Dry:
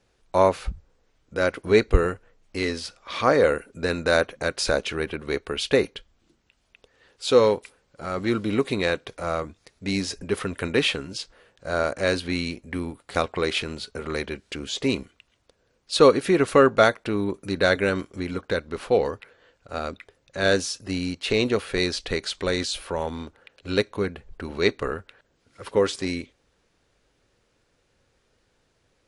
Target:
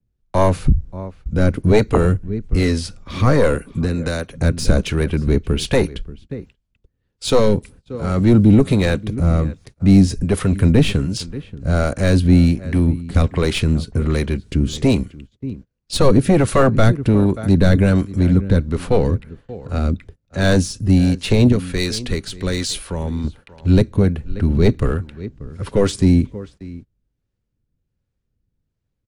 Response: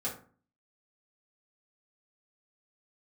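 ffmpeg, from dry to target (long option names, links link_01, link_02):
-filter_complex "[0:a]asettb=1/sr,asplit=3[link_01][link_02][link_03];[link_01]atrim=end=21.524[link_04];[link_02]atrim=start=21.52:end=23.24,asetpts=PTS-STARTPTS,afade=type=in:duration=0.004:curve=qsin,afade=type=out:start_time=1.716:duration=0.004:curve=qsin,lowshelf=frequency=430:gain=-11[link_05];[link_03]atrim=start=23.236[link_06];[link_04][link_05]acrossfade=duration=0.004:curve1=hsin:curve2=qsin[link_07];[link_07][link_06]acrossfade=duration=0.004:curve1=qsin:curve2=hsin,asplit=2[link_08][link_09];[link_09]adelay=583.1,volume=-19dB,highshelf=frequency=4000:gain=-13.1[link_10];[link_08][link_10]amix=inputs=2:normalize=0,asettb=1/sr,asplit=3[link_11][link_12][link_13];[link_11]atrim=end=3.554[link_14];[link_12]atrim=start=3.55:end=4.34,asetpts=PTS-STARTPTS,afade=type=in:duration=0.004:curve=qsin,afade=type=out:start_time=0.786:duration=0.004:curve=qsin,acrossover=split=180|410|2500[link_15][link_16][link_17][link_18];[link_15]acompressor=threshold=-49dB:ratio=4[link_19];[link_16]acompressor=threshold=-40dB:ratio=4[link_20];[link_17]acompressor=threshold=-30dB:ratio=4[link_21];[link_18]acompressor=threshold=-35dB:ratio=4[link_22];[link_19][link_20][link_21][link_22]amix=inputs=4:normalize=0[link_23];[link_13]atrim=start=4.336[link_24];[link_14][link_23]acrossfade=duration=0.004:curve1=hsin:curve2=qsin[link_25];[link_25][link_24]acrossfade=duration=0.004:curve1=qsin:curve2=hsin,asplit=2[link_26][link_27];[link_27]aeval=exprs='clip(val(0),-1,0.0501)':channel_layout=same,volume=-3dB[link_28];[link_26][link_28]amix=inputs=2:normalize=0,agate=range=-24dB:threshold=-47dB:ratio=16:detection=peak,acrossover=split=220|920[link_29][link_30][link_31];[link_29]aeval=exprs='0.562*sin(PI/2*7.94*val(0)/0.562)':channel_layout=same[link_32];[link_32][link_30][link_31]amix=inputs=3:normalize=0,acrossover=split=430[link_33][link_34];[link_33]aeval=exprs='val(0)*(1-0.5/2+0.5/2*cos(2*PI*1.3*n/s))':channel_layout=same[link_35];[link_34]aeval=exprs='val(0)*(1-0.5/2-0.5/2*cos(2*PI*1.3*n/s))':channel_layout=same[link_36];[link_35][link_36]amix=inputs=2:normalize=0,adynamicequalizer=threshold=0.00708:dfrequency=6800:dqfactor=0.7:tfrequency=6800:tqfactor=0.7:attack=5:release=100:ratio=0.375:range=4:mode=boostabove:tftype=highshelf,volume=-1dB"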